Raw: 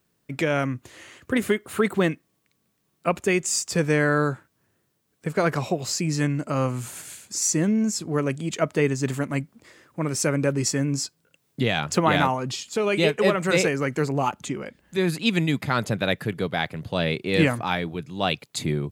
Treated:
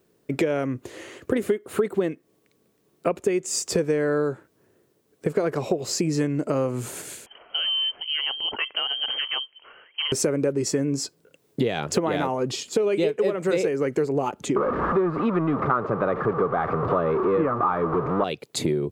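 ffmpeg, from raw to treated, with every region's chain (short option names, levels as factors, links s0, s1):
-filter_complex "[0:a]asettb=1/sr,asplit=3[s0][s1][s2];[s0]atrim=end=7.264[s3];[s1]atrim=start=7.26:end=10.12,asetpts=PTS-STARTPTS,afade=t=in:d=0.004:c=qsin,afade=t=out:st=2.856:d=0.004:c=qsin,acompressor=threshold=0.0708:ratio=6:attack=3.2:release=140:knee=1:detection=peak,lowpass=f=2800:t=q:w=0.5098,lowpass=f=2800:t=q:w=0.6013,lowpass=f=2800:t=q:w=0.9,lowpass=f=2800:t=q:w=2.563,afreqshift=-3300[s4];[s2]atrim=start=10.116[s5];[s3][s4]acrossfade=d=0.004:c1=hsin:c2=qsin[s6];[s6][s5]acrossfade=d=0.004:c1=qsin:c2=hsin,asettb=1/sr,asplit=3[s7][s8][s9];[s7]atrim=end=14.564[s10];[s8]atrim=start=14.56:end=18.24,asetpts=PTS-STARTPTS,afade=t=in:d=0.004:c=qsin,afade=t=out:st=3.676:d=0.004:c=qsin,aeval=exprs='val(0)+0.5*0.0841*sgn(val(0))':c=same,lowpass=f=1200:t=q:w=11[s11];[s9]atrim=start=18.236[s12];[s10][s11]acrossfade=d=0.004:c1=hsin:c2=qsin[s13];[s13][s12]acrossfade=d=0.004:c1=qsin:c2=hsin,equalizer=f=420:w=1.1:g=13,acompressor=threshold=0.0794:ratio=6,volume=1.19"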